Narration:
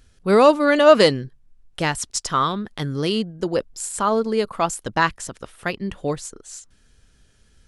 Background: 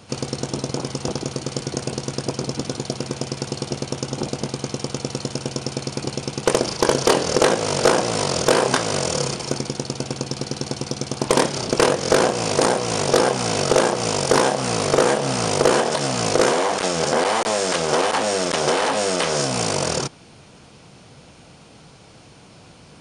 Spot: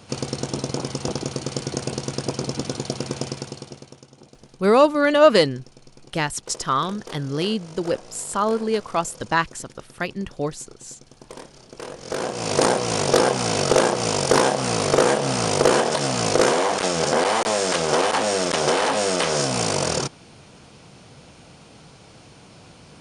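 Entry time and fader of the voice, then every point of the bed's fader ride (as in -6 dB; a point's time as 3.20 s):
4.35 s, -1.5 dB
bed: 3.26 s -1 dB
4.12 s -22.5 dB
11.71 s -22.5 dB
12.57 s -0.5 dB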